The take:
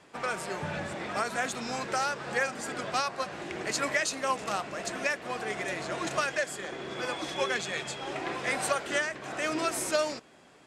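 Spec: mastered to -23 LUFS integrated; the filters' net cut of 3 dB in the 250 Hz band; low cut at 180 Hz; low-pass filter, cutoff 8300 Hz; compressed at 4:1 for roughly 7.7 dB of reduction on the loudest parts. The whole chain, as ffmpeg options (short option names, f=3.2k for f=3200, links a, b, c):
-af "highpass=180,lowpass=8.3k,equalizer=f=250:t=o:g=-3,acompressor=threshold=-33dB:ratio=4,volume=13.5dB"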